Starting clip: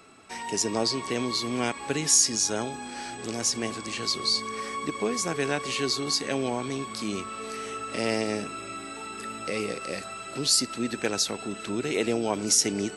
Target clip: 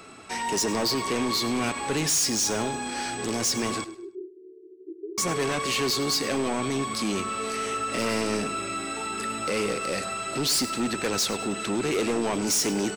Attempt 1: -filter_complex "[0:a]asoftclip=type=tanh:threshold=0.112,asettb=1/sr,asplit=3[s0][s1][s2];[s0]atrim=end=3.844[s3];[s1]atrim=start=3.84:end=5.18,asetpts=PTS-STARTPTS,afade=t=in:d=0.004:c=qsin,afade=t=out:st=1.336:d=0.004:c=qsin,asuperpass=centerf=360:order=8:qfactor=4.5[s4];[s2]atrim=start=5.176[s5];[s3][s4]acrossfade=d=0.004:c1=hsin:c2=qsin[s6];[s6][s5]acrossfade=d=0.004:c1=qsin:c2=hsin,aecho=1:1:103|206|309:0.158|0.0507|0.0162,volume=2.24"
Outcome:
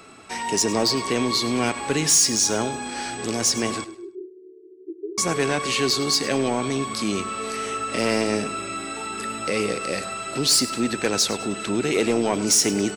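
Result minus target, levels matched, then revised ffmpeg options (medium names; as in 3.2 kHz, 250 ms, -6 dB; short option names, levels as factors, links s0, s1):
saturation: distortion -8 dB
-filter_complex "[0:a]asoftclip=type=tanh:threshold=0.0376,asettb=1/sr,asplit=3[s0][s1][s2];[s0]atrim=end=3.844[s3];[s1]atrim=start=3.84:end=5.18,asetpts=PTS-STARTPTS,afade=t=in:d=0.004:c=qsin,afade=t=out:st=1.336:d=0.004:c=qsin,asuperpass=centerf=360:order=8:qfactor=4.5[s4];[s2]atrim=start=5.176[s5];[s3][s4]acrossfade=d=0.004:c1=hsin:c2=qsin[s6];[s6][s5]acrossfade=d=0.004:c1=qsin:c2=hsin,aecho=1:1:103|206|309:0.158|0.0507|0.0162,volume=2.24"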